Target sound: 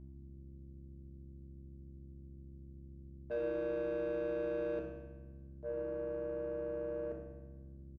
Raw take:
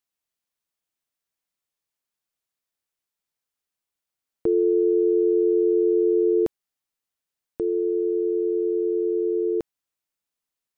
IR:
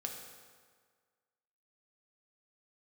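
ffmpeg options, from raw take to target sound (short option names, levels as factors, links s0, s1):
-filter_complex "[0:a]agate=range=0.0224:threshold=0.355:ratio=3:detection=peak,equalizer=f=200:w=0.42:g=9.5,bandreject=f=400:w=12,acrossover=split=230|510[s0][s1][s2];[s0]acompressor=threshold=0.00282:ratio=4[s3];[s1]acompressor=threshold=0.0178:ratio=4[s4];[s2]acompressor=threshold=0.00501:ratio=4[s5];[s3][s4][s5]amix=inputs=3:normalize=0,asplit=2[s6][s7];[s7]asoftclip=type=hard:threshold=0.0119,volume=0.266[s8];[s6][s8]amix=inputs=2:normalize=0,aeval=exprs='val(0)+0.00398*(sin(2*PI*50*n/s)+sin(2*PI*2*50*n/s)/2+sin(2*PI*3*50*n/s)/3+sin(2*PI*4*50*n/s)/4+sin(2*PI*5*50*n/s)/5)':c=same,asoftclip=type=tanh:threshold=0.0211,asplit=5[s9][s10][s11][s12][s13];[s10]adelay=82,afreqshift=-110,volume=0.188[s14];[s11]adelay=164,afreqshift=-220,volume=0.0851[s15];[s12]adelay=246,afreqshift=-330,volume=0.038[s16];[s13]adelay=328,afreqshift=-440,volume=0.0172[s17];[s9][s14][s15][s16][s17]amix=inputs=5:normalize=0[s18];[1:a]atrim=start_sample=2205,asetrate=41454,aresample=44100[s19];[s18][s19]afir=irnorm=-1:irlink=0,asetrate=59535,aresample=44100"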